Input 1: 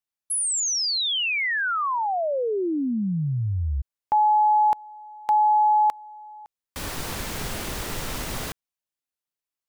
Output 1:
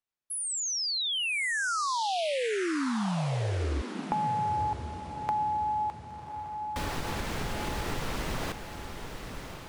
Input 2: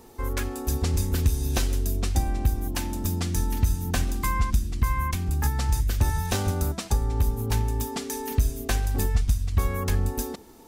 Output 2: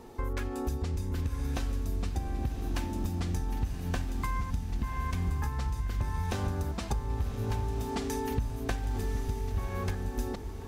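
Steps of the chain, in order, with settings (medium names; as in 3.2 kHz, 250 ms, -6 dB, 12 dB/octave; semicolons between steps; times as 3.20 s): low-pass 2.9 kHz 6 dB/octave; compression 10:1, threshold -30 dBFS; on a send: echo that smears into a reverb 1107 ms, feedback 41%, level -7.5 dB; on the sum: trim +1.5 dB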